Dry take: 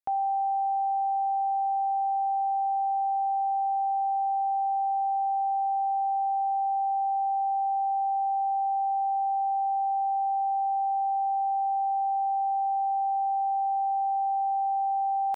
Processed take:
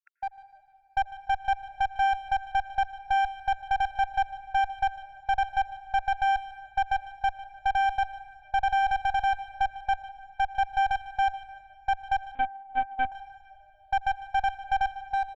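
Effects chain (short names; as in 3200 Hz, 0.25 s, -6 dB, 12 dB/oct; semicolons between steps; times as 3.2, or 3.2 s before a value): random spectral dropouts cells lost 78%; Bessel high-pass 700 Hz, order 8; tilt -4.5 dB/oct; limiter -32 dBFS, peak gain reduction 7.5 dB; AGC gain up to 11.5 dB; one-sided clip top -36 dBFS, bottom -22 dBFS; air absorption 67 m; feedback echo 0.15 s, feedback 41%, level -17 dB; on a send at -16.5 dB: reverb RT60 3.1 s, pre-delay 82 ms; 12.35–13.12 on the sum: LPC vocoder at 8 kHz pitch kept; gain +6 dB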